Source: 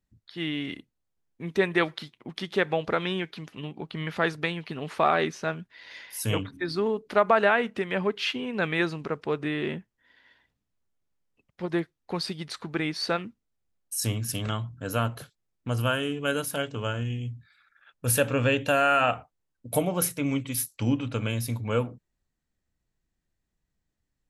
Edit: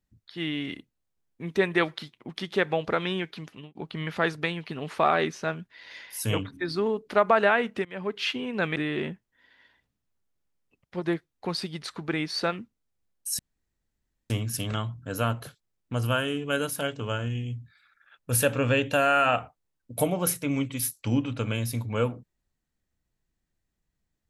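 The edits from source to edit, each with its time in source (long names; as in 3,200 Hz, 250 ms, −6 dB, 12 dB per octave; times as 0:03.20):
0:03.47–0:03.75: fade out
0:07.85–0:08.25: fade in, from −19 dB
0:08.76–0:09.42: remove
0:14.05: splice in room tone 0.91 s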